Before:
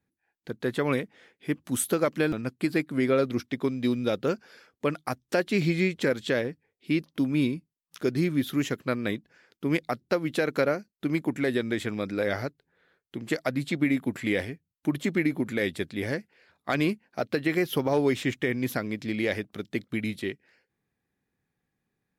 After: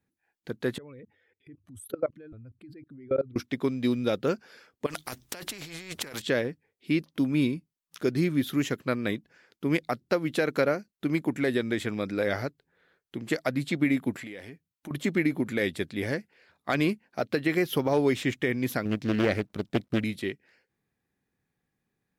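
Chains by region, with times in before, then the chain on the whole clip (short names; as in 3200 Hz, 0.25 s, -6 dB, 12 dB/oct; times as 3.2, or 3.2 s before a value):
0.78–3.36 spectral contrast raised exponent 1.7 + resonant low shelf 130 Hz +11 dB, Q 3 + level quantiser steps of 23 dB
4.86–6.22 negative-ratio compressor -35 dBFS + spectral compressor 2:1
14.15–14.91 compressor 8:1, threshold -36 dBFS + low shelf 97 Hz -10 dB
18.85–20.04 G.711 law mismatch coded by A + low shelf 390 Hz +8 dB + Doppler distortion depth 0.51 ms
whole clip: dry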